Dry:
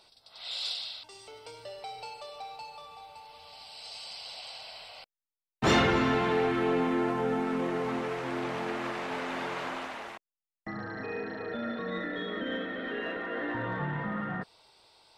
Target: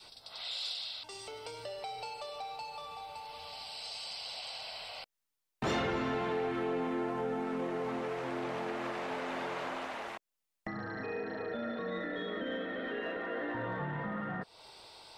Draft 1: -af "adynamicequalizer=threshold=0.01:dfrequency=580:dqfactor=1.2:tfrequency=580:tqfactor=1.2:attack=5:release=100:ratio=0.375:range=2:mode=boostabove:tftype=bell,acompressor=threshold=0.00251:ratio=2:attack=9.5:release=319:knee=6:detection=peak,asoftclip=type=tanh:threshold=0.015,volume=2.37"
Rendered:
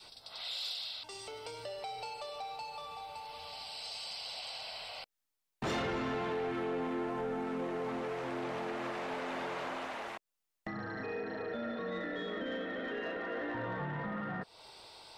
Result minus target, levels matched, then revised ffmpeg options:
saturation: distortion +19 dB
-af "adynamicequalizer=threshold=0.01:dfrequency=580:dqfactor=1.2:tfrequency=580:tqfactor=1.2:attack=5:release=100:ratio=0.375:range=2:mode=boostabove:tftype=bell,acompressor=threshold=0.00251:ratio=2:attack=9.5:release=319:knee=6:detection=peak,asoftclip=type=tanh:threshold=0.0562,volume=2.37"

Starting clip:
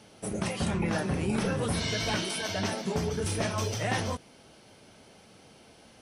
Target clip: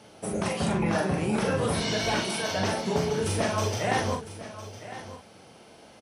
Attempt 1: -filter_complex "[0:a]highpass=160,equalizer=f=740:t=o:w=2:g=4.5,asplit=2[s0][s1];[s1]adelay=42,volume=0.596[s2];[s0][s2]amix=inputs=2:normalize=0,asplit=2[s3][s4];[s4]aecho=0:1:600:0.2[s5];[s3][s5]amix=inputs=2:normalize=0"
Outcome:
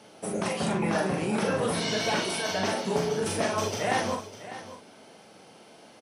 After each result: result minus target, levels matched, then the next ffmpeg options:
echo 406 ms early; 125 Hz band -4.0 dB
-filter_complex "[0:a]highpass=160,equalizer=f=740:t=o:w=2:g=4.5,asplit=2[s0][s1];[s1]adelay=42,volume=0.596[s2];[s0][s2]amix=inputs=2:normalize=0,asplit=2[s3][s4];[s4]aecho=0:1:1006:0.2[s5];[s3][s5]amix=inputs=2:normalize=0"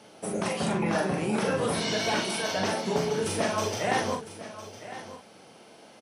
125 Hz band -4.0 dB
-filter_complex "[0:a]highpass=52,equalizer=f=740:t=o:w=2:g=4.5,asplit=2[s0][s1];[s1]adelay=42,volume=0.596[s2];[s0][s2]amix=inputs=2:normalize=0,asplit=2[s3][s4];[s4]aecho=0:1:1006:0.2[s5];[s3][s5]amix=inputs=2:normalize=0"

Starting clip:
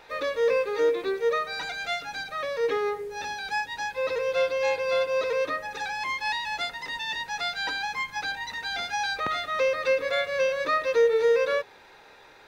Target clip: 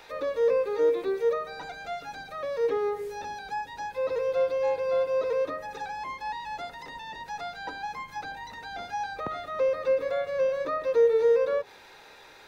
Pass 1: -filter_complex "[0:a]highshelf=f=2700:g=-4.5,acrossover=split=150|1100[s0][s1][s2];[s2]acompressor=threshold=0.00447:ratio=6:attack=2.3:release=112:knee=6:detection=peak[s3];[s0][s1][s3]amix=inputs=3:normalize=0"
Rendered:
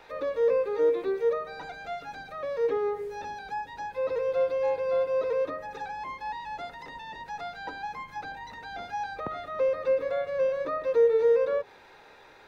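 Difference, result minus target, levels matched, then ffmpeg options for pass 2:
4 kHz band -3.5 dB
-filter_complex "[0:a]highshelf=f=2700:g=7.5,acrossover=split=150|1100[s0][s1][s2];[s2]acompressor=threshold=0.00447:ratio=6:attack=2.3:release=112:knee=6:detection=peak[s3];[s0][s1][s3]amix=inputs=3:normalize=0"

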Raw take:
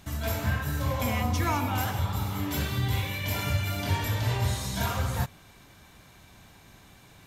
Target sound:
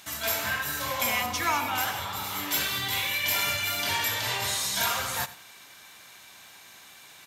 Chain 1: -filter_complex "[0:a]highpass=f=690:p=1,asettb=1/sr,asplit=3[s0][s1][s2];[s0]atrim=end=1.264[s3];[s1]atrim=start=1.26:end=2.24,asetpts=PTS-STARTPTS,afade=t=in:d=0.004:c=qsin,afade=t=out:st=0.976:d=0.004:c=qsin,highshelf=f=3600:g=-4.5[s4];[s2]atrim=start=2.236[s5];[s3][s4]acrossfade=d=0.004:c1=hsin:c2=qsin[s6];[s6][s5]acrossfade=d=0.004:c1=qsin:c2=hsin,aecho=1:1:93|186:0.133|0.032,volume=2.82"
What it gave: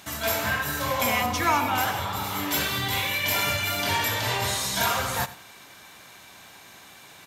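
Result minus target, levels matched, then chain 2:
500 Hz band +4.5 dB
-filter_complex "[0:a]highpass=f=1800:p=1,asettb=1/sr,asplit=3[s0][s1][s2];[s0]atrim=end=1.264[s3];[s1]atrim=start=1.26:end=2.24,asetpts=PTS-STARTPTS,afade=t=in:d=0.004:c=qsin,afade=t=out:st=0.976:d=0.004:c=qsin,highshelf=f=3600:g=-4.5[s4];[s2]atrim=start=2.236[s5];[s3][s4]acrossfade=d=0.004:c1=hsin:c2=qsin[s6];[s6][s5]acrossfade=d=0.004:c1=qsin:c2=hsin,aecho=1:1:93|186:0.133|0.032,volume=2.82"

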